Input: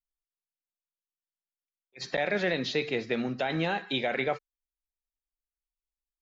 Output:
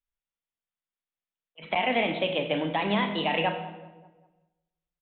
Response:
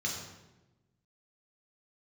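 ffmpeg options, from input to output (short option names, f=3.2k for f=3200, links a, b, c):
-filter_complex "[0:a]equalizer=f=310:t=o:w=0.57:g=-3.5,asetrate=54684,aresample=44100,asplit=2[a][b];[b]adelay=194,lowpass=f=1.7k:p=1,volume=-20dB,asplit=2[c][d];[d]adelay=194,lowpass=f=1.7k:p=1,volume=0.54,asplit=2[e][f];[f]adelay=194,lowpass=f=1.7k:p=1,volume=0.54,asplit=2[g][h];[h]adelay=194,lowpass=f=1.7k:p=1,volume=0.54[i];[a][c][e][g][i]amix=inputs=5:normalize=0,asplit=2[j][k];[1:a]atrim=start_sample=2205,adelay=38[l];[k][l]afir=irnorm=-1:irlink=0,volume=-10.5dB[m];[j][m]amix=inputs=2:normalize=0,aresample=8000,aresample=44100,volume=2.5dB"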